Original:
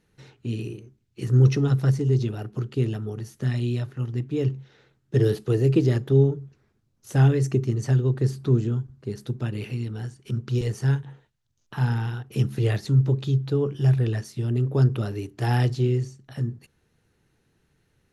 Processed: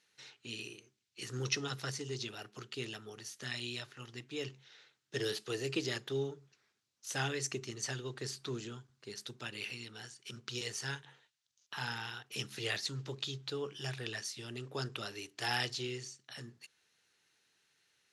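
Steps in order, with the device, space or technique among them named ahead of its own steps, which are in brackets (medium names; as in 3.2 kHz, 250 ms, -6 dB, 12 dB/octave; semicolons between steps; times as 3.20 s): piezo pickup straight into a mixer (low-pass 5.1 kHz 12 dB/octave; differentiator); trim +10.5 dB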